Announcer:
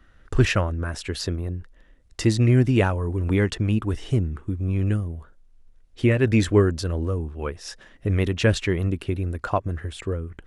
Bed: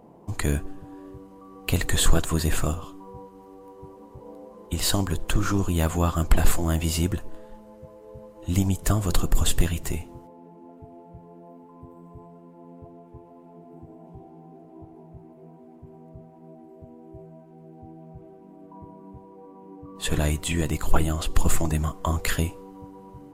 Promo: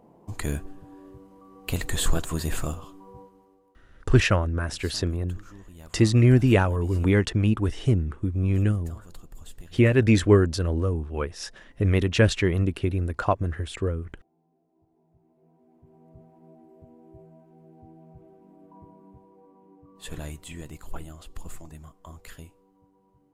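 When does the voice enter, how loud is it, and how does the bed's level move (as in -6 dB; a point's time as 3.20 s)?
3.75 s, +0.5 dB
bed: 3.21 s -4.5 dB
3.84 s -23.5 dB
14.75 s -23.5 dB
16.20 s -5.5 dB
18.80 s -5.5 dB
21.63 s -19.5 dB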